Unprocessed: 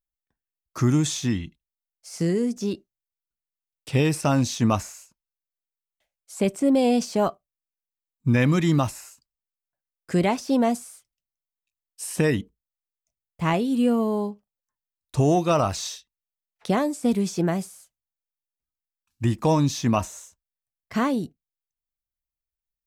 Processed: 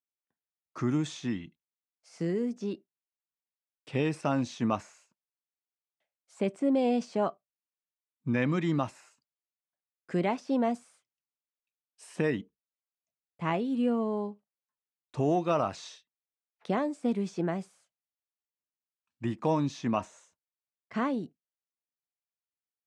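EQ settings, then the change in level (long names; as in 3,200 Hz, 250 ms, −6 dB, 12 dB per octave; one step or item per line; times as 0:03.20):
high-pass filter 170 Hz 12 dB per octave
low-pass filter 9,400 Hz 24 dB per octave
bass and treble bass 0 dB, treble −12 dB
−6.0 dB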